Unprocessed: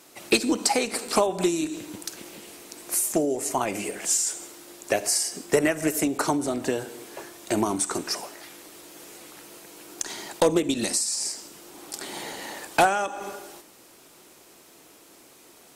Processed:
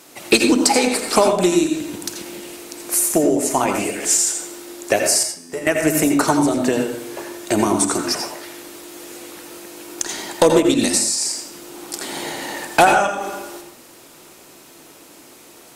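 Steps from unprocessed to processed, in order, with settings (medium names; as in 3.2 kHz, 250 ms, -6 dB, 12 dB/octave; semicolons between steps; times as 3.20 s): 5.23–5.67 s: feedback comb 85 Hz, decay 0.95 s, harmonics all, mix 90%; on a send: reverberation RT60 0.45 s, pre-delay 78 ms, DRR 4 dB; on the sum: trim +6.5 dB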